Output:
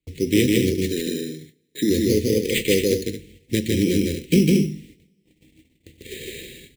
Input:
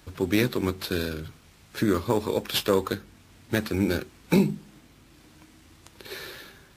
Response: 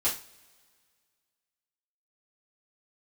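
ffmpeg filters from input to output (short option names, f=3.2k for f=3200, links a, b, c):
-filter_complex "[0:a]asplit=3[a][b][c];[a]afade=t=out:st=0.86:d=0.02[d];[b]highpass=f=170:w=0.5412,highpass=f=170:w=1.3066,equalizer=f=180:t=q:w=4:g=-3,equalizer=f=490:t=q:w=4:g=-4,equalizer=f=780:t=q:w=4:g=-7,equalizer=f=1.8k:t=q:w=4:g=9,lowpass=f=2.1k:w=0.5412,lowpass=f=2.1k:w=1.3066,afade=t=in:st=0.86:d=0.02,afade=t=out:st=1.89:d=0.02[e];[c]afade=t=in:st=1.89:d=0.02[f];[d][e][f]amix=inputs=3:normalize=0,acrusher=samples=8:mix=1:aa=0.000001,asuperstop=centerf=1000:order=12:qfactor=0.68,aecho=1:1:154.5|224.5:0.794|0.355,agate=range=-31dB:threshold=-49dB:ratio=16:detection=peak,asplit=2[g][h];[1:a]atrim=start_sample=2205[i];[h][i]afir=irnorm=-1:irlink=0,volume=-21.5dB[j];[g][j]amix=inputs=2:normalize=0,volume=3.5dB"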